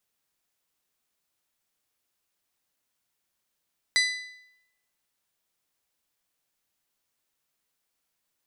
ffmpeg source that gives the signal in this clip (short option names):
-f lavfi -i "aevalsrc='0.106*pow(10,-3*t/0.82)*sin(2*PI*2000*t)+0.075*pow(10,-3*t/0.666)*sin(2*PI*4000*t)+0.0531*pow(10,-3*t/0.631)*sin(2*PI*4800*t)+0.0376*pow(10,-3*t/0.59)*sin(2*PI*6000*t)+0.0266*pow(10,-3*t/0.541)*sin(2*PI*8000*t)+0.0188*pow(10,-3*t/0.506)*sin(2*PI*10000*t)':d=1.55:s=44100"